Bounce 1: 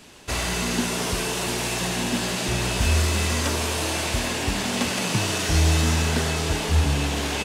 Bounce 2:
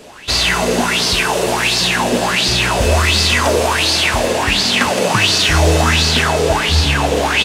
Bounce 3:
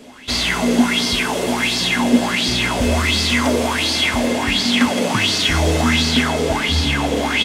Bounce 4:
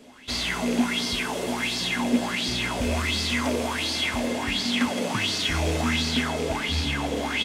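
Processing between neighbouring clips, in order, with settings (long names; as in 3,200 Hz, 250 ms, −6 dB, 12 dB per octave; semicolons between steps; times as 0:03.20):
auto-filter bell 1.4 Hz 480–4,700 Hz +17 dB; level +5 dB
hollow resonant body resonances 250/2,100/3,300 Hz, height 15 dB, ringing for 90 ms; level −5.5 dB
loose part that buzzes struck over −18 dBFS, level −16 dBFS; level −8.5 dB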